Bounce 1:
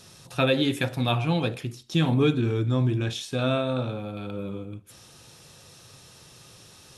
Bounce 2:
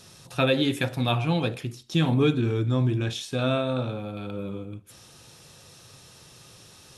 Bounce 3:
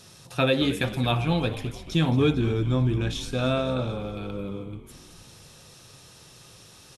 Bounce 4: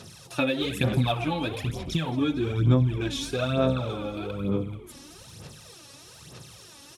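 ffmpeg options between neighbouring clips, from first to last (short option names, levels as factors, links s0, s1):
-af anull
-filter_complex "[0:a]asplit=7[s0][s1][s2][s3][s4][s5][s6];[s1]adelay=222,afreqshift=-68,volume=0.2[s7];[s2]adelay=444,afreqshift=-136,volume=0.116[s8];[s3]adelay=666,afreqshift=-204,volume=0.0668[s9];[s4]adelay=888,afreqshift=-272,volume=0.0389[s10];[s5]adelay=1110,afreqshift=-340,volume=0.0226[s11];[s6]adelay=1332,afreqshift=-408,volume=0.013[s12];[s0][s7][s8][s9][s10][s11][s12]amix=inputs=7:normalize=0"
-af "highpass=64,acompressor=threshold=0.0631:ratio=6,aphaser=in_gain=1:out_gain=1:delay=3.6:decay=0.65:speed=1.1:type=sinusoidal"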